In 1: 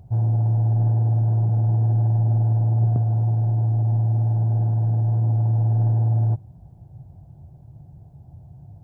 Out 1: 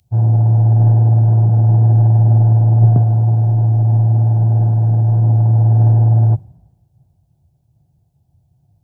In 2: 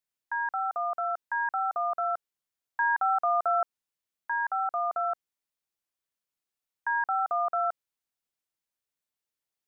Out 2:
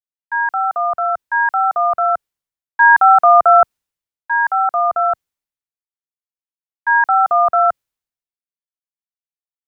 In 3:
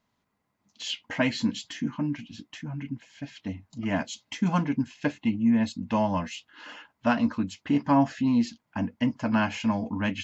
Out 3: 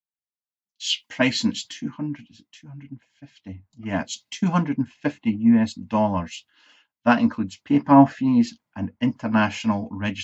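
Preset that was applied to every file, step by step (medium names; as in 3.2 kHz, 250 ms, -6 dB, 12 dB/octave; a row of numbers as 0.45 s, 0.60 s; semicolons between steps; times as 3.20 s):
three bands expanded up and down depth 100%; peak normalisation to -1.5 dBFS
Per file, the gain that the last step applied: +8.5 dB, +13.5 dB, +3.5 dB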